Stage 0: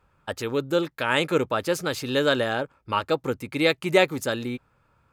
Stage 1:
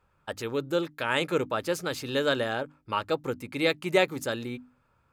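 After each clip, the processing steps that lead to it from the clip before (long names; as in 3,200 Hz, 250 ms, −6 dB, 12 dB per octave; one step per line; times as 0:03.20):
mains-hum notches 50/100/150/200/250/300 Hz
level −4 dB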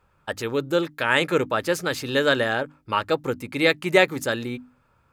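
dynamic equaliser 1,800 Hz, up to +5 dB, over −44 dBFS, Q 3.1
level +5 dB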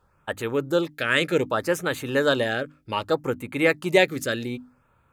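auto-filter notch sine 0.65 Hz 850–5,300 Hz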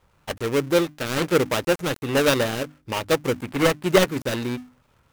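gap after every zero crossing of 0.29 ms
level +3.5 dB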